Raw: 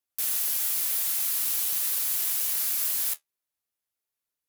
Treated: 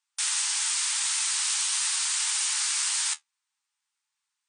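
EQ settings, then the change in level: brick-wall FIR band-pass 790–9500 Hz; +8.5 dB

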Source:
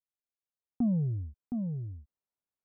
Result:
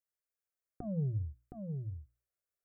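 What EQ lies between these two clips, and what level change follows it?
notches 60/120/180/240/300 Hz; fixed phaser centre 900 Hz, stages 6; +2.0 dB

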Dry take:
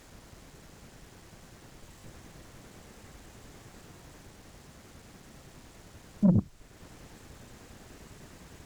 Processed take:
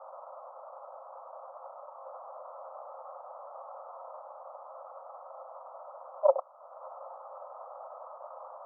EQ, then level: Chebyshev band-pass 530–1300 Hz, order 5; air absorption 450 m; +17.0 dB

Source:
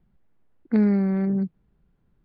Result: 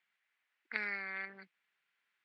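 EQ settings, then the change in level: resonant high-pass 2100 Hz, resonance Q 2.1; air absorption 62 m; +3.5 dB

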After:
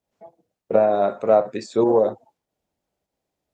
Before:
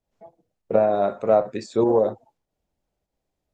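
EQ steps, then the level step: HPF 150 Hz 6 dB/oct; +2.0 dB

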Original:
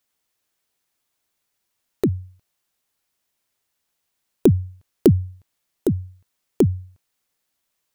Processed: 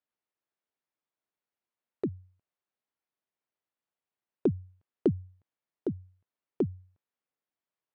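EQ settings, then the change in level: HPF 250 Hz 6 dB/oct; tape spacing loss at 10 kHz 34 dB; -8.0 dB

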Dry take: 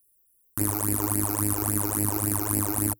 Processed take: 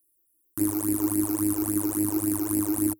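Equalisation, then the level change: bell 320 Hz +15 dB 0.46 oct; bell 13000 Hz +4 dB 2.4 oct; -7.5 dB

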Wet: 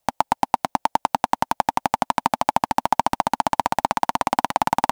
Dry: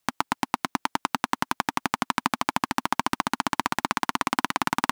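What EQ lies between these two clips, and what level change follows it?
low shelf 140 Hz +11.5 dB; band shelf 680 Hz +13 dB 1.1 oct; high shelf 5100 Hz +4 dB; -2.5 dB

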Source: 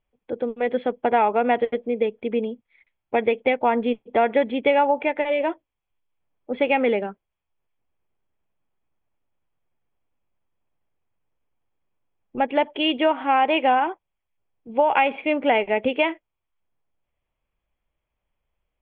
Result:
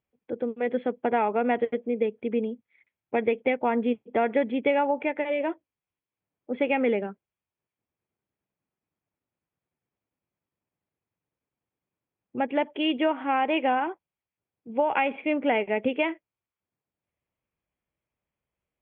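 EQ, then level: BPF 110–2300 Hz; bell 850 Hz -6.5 dB 1.9 oct; 0.0 dB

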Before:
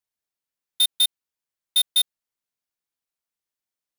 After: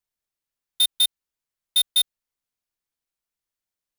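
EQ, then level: low shelf 68 Hz +12 dB; 0.0 dB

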